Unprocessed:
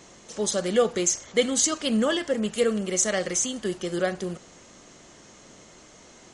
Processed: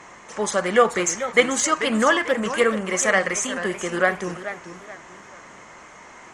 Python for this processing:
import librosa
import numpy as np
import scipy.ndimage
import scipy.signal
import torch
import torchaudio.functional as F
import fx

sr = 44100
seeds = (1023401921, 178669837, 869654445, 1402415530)

y = fx.cheby_harmonics(x, sr, harmonics=(2, 3), levels_db=(-42, -23), full_scale_db=-8.0)
y = fx.graphic_eq_10(y, sr, hz=(1000, 2000, 4000), db=(12, 11, -6))
y = fx.echo_warbled(y, sr, ms=436, feedback_pct=33, rate_hz=2.8, cents=180, wet_db=-11.5)
y = F.gain(torch.from_numpy(y), 2.0).numpy()